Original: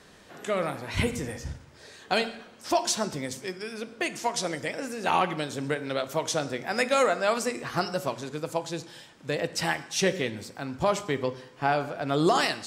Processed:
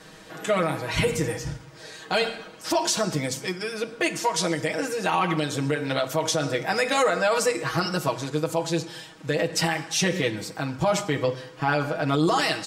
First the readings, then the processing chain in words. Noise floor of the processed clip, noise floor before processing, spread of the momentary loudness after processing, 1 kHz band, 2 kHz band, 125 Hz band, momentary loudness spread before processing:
-46 dBFS, -53 dBFS, 9 LU, +2.0 dB, +3.5 dB, +6.5 dB, 13 LU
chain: comb 6.3 ms, depth 97%; peak limiter -17 dBFS, peak gain reduction 9 dB; trim +4 dB

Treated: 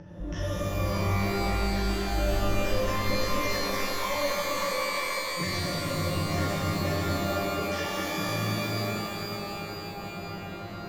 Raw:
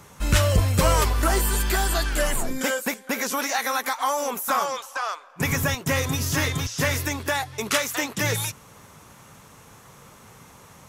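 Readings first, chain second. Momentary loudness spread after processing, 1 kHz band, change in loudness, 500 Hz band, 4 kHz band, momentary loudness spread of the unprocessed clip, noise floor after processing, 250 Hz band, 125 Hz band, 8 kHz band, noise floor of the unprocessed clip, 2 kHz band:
8 LU, -4.5 dB, -5.5 dB, -2.0 dB, -3.0 dB, 7 LU, -38 dBFS, -1.0 dB, -4.5 dB, -10.5 dB, -50 dBFS, -6.0 dB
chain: local Wiener filter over 41 samples; rippled EQ curve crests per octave 1.2, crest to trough 16 dB; in parallel at +1 dB: upward compressor, threshold -18 dBFS; on the sum: peak limiter -10.5 dBFS, peak gain reduction 13.5 dB; feedback comb 890 Hz, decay 0.27 s, mix 80%; LFO low-pass square 3.5 Hz 450–6300 Hz; distance through air 160 m; pitch-shifted reverb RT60 3.2 s, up +12 st, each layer -2 dB, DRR -7 dB; trim -5.5 dB

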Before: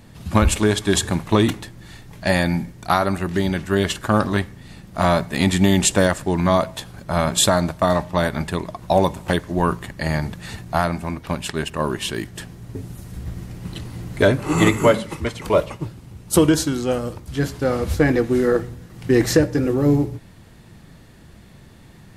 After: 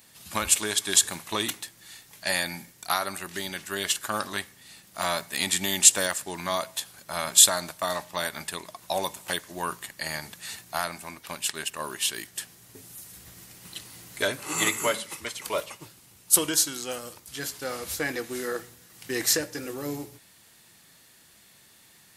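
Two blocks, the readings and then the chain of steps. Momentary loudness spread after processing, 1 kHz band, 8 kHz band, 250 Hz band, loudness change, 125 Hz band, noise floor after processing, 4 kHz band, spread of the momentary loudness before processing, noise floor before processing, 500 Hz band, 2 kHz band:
20 LU, -9.0 dB, +4.0 dB, -18.0 dB, -6.0 dB, -22.0 dB, -56 dBFS, -0.5 dB, 17 LU, -46 dBFS, -13.5 dB, -5.0 dB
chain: tilt EQ +4.5 dB/octave; trim -9 dB

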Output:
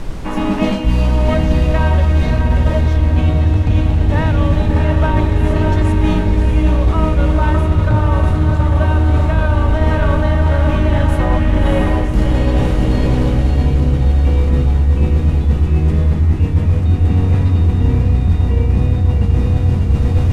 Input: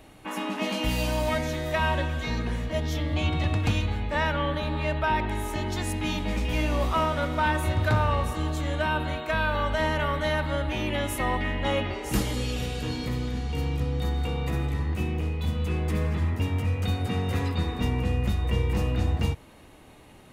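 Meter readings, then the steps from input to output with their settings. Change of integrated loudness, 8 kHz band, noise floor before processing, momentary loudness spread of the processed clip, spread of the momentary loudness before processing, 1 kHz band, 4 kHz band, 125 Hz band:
+13.0 dB, no reading, -50 dBFS, 1 LU, 5 LU, +6.0 dB, +1.5 dB, +15.5 dB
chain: added noise pink -42 dBFS; tilt EQ -3 dB/octave; on a send: echo that smears into a reverb 640 ms, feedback 64%, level -3 dB; on the sum: level rider; low-pass 11 kHz 12 dB/octave; reverse; compression 10:1, threshold -17 dBFS, peak gain reduction 12.5 dB; reverse; trim +8 dB

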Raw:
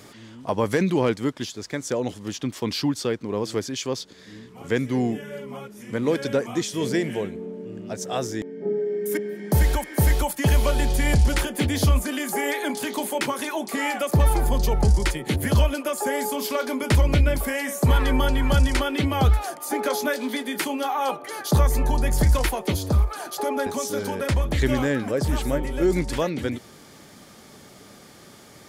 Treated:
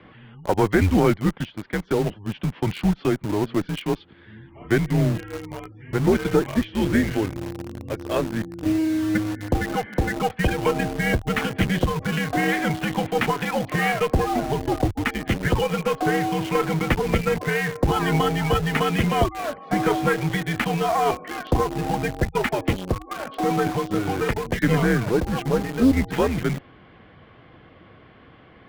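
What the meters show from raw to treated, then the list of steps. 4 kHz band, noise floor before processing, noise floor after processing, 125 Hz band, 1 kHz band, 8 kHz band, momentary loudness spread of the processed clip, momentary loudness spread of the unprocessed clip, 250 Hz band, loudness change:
-1.5 dB, -48 dBFS, -50 dBFS, -1.0 dB, +3.5 dB, -6.5 dB, 8 LU, 10 LU, +3.5 dB, +0.5 dB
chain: spectral gate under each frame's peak -30 dB strong; mistuned SSB -100 Hz 160–3100 Hz; in parallel at -5 dB: bit crusher 5-bit; on the sum: Chebyshev shaper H 4 -20 dB, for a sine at -5.5 dBFS

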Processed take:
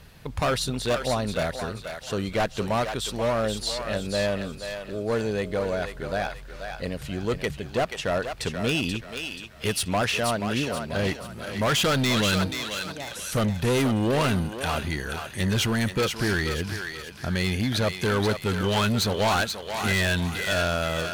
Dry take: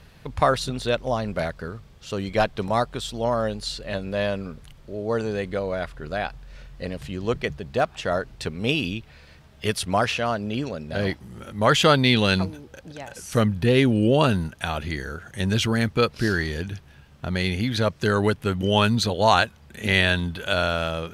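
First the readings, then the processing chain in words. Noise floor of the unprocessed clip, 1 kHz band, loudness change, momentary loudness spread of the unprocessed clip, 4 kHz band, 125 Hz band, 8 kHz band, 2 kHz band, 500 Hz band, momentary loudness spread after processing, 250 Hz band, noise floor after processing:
-50 dBFS, -3.5 dB, -2.5 dB, 15 LU, -1.0 dB, -2.0 dB, +4.0 dB, -1.5 dB, -2.5 dB, 10 LU, -2.5 dB, -41 dBFS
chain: treble shelf 9.4 kHz +9 dB; hard clipper -20 dBFS, distortion -8 dB; thinning echo 482 ms, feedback 42%, high-pass 710 Hz, level -5 dB

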